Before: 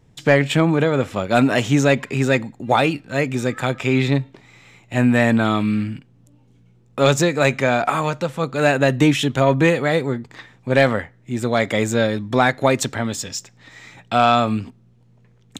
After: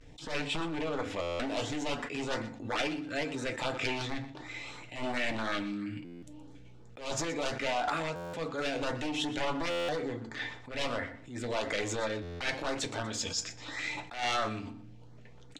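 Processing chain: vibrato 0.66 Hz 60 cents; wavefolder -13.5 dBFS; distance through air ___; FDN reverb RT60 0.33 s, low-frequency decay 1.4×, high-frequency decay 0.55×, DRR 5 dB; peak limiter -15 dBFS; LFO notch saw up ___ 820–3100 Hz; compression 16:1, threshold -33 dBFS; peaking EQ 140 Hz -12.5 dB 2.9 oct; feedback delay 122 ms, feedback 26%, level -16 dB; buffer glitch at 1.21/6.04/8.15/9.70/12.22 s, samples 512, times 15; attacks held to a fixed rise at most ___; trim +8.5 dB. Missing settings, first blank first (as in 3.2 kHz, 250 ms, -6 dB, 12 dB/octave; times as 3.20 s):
74 m, 2.9 Hz, 120 dB/s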